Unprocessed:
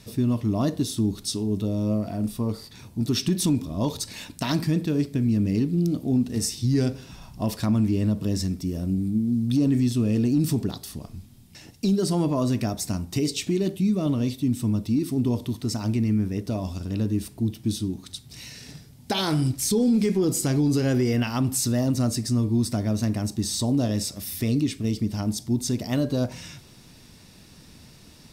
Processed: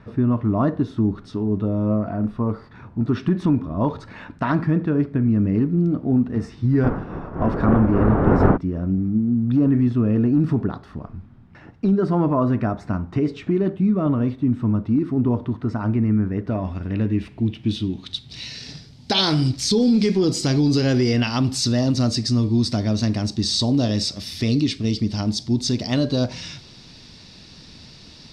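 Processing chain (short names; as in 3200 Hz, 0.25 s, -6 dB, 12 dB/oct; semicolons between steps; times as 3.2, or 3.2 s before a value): 6.83–8.56 wind noise 340 Hz -24 dBFS; low-pass sweep 1400 Hz -> 4600 Hz, 16.2–18.67; gain +3.5 dB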